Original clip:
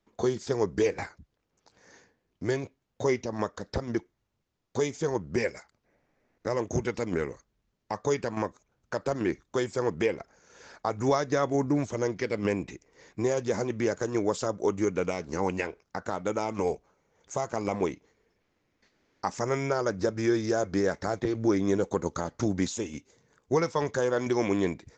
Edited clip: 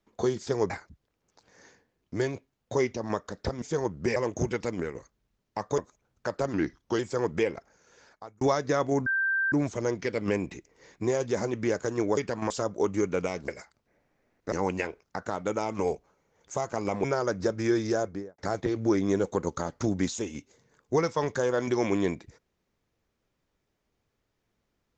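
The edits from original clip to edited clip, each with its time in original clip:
0.7–0.99 cut
3.91–4.92 cut
5.46–6.5 move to 15.32
7.02–7.29 fade out, to -7.5 dB
8.12–8.45 move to 14.34
9.2–9.62 speed 91%
10.18–11.04 fade out
11.69 add tone 1570 Hz -23.5 dBFS 0.46 s
17.84–19.63 cut
20.5–20.97 studio fade out

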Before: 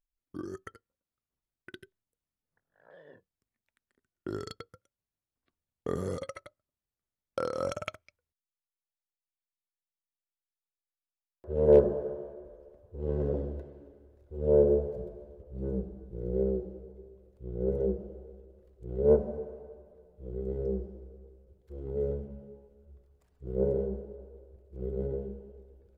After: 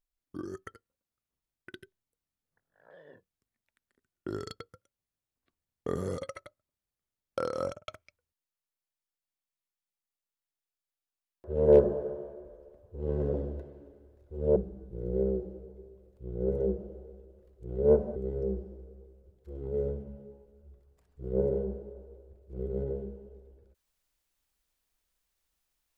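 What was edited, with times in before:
7.6–7.88 studio fade out
14.56–15.76 cut
19.36–20.39 cut

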